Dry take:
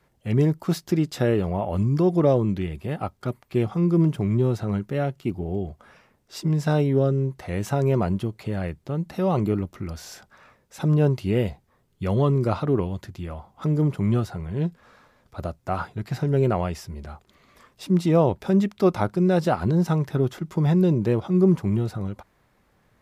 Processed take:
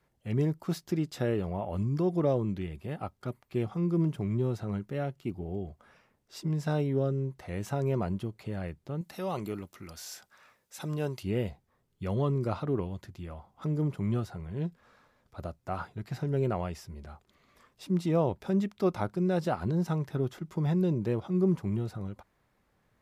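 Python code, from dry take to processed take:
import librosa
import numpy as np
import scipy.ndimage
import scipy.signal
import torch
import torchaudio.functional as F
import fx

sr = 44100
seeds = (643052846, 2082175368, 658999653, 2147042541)

y = fx.tilt_eq(x, sr, slope=2.5, at=(9.01, 11.23))
y = F.gain(torch.from_numpy(y), -8.0).numpy()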